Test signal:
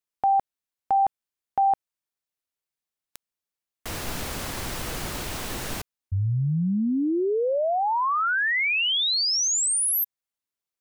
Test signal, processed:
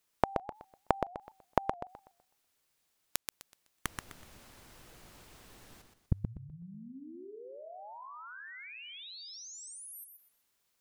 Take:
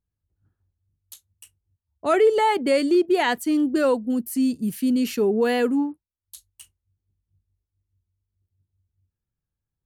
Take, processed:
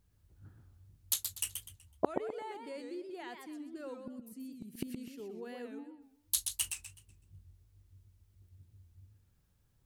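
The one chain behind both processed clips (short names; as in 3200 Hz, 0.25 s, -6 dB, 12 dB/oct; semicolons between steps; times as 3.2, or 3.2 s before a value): flipped gate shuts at -25 dBFS, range -37 dB; warbling echo 0.125 s, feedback 32%, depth 195 cents, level -6 dB; gain +12 dB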